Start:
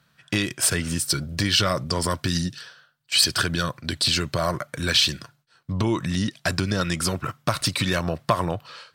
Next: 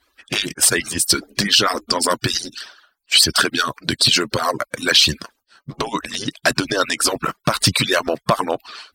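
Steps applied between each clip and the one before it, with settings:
harmonic-percussive split with one part muted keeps percussive
boost into a limiter +9.5 dB
level −1 dB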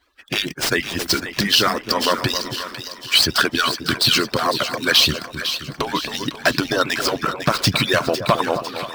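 running median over 5 samples
echo with a time of its own for lows and highs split 1,200 Hz, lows 267 ms, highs 503 ms, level −9.5 dB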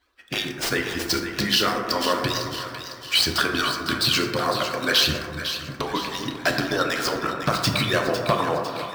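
dense smooth reverb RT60 1.6 s, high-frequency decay 0.3×, DRR 2.5 dB
level −5.5 dB

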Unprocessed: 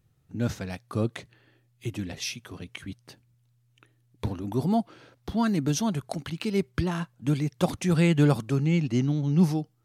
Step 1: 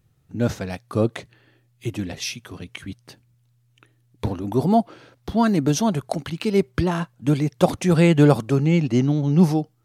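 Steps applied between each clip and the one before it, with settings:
dynamic equaliser 580 Hz, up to +6 dB, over −39 dBFS, Q 0.75
level +4 dB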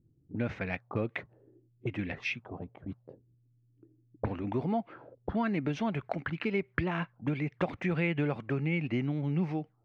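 downward compressor 4 to 1, threshold −22 dBFS, peak gain reduction 11.5 dB
envelope-controlled low-pass 300–2,300 Hz up, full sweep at −25.5 dBFS
level −6.5 dB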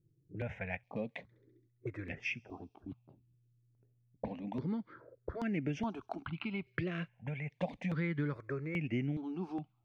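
delay with a high-pass on its return 67 ms, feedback 71%, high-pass 5,000 Hz, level −21 dB
step-sequenced phaser 2.4 Hz 240–4,000 Hz
level −3 dB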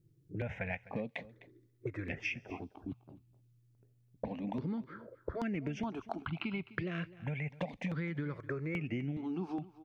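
downward compressor, threshold −38 dBFS, peak gain reduction 9 dB
single-tap delay 255 ms −18 dB
level +4.5 dB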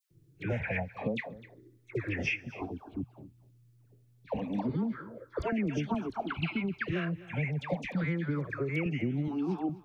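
all-pass dispersion lows, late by 111 ms, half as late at 1,200 Hz
level +5.5 dB

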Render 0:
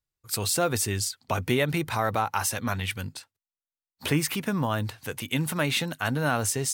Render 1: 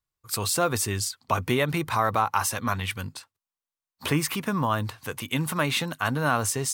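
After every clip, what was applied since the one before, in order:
parametric band 1,100 Hz +8 dB 0.43 octaves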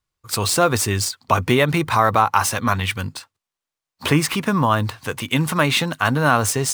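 running median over 3 samples
level +7.5 dB

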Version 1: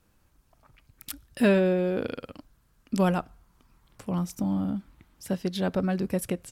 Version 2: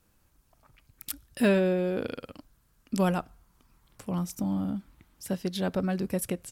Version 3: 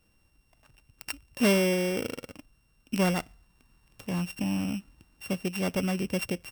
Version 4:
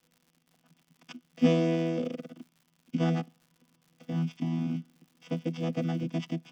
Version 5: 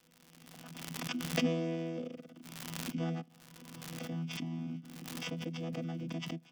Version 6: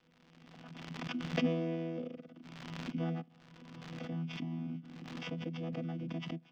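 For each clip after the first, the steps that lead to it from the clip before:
high-shelf EQ 5,900 Hz +5.5 dB; level −2 dB
samples sorted by size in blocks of 16 samples
channel vocoder with a chord as carrier bare fifth, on E3; surface crackle 130 per second −50 dBFS
background raised ahead of every attack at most 29 dB per second; level −9 dB
high-frequency loss of the air 190 metres

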